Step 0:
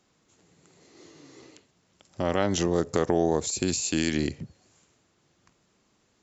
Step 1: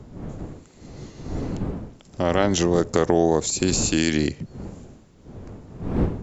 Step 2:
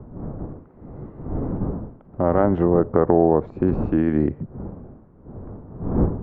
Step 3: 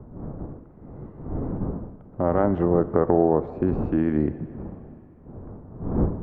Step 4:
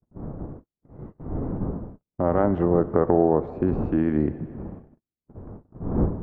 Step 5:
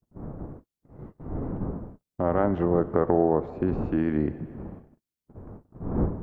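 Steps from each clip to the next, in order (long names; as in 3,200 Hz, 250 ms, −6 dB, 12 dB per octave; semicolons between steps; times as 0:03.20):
wind on the microphone 250 Hz −37 dBFS; level +5 dB
low-pass filter 1,300 Hz 24 dB per octave; level +2.5 dB
dense smooth reverb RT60 3 s, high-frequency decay 1×, DRR 14 dB; level −3 dB
noise gate −39 dBFS, range −48 dB
high-shelf EQ 2,000 Hz +7.5 dB; level −3 dB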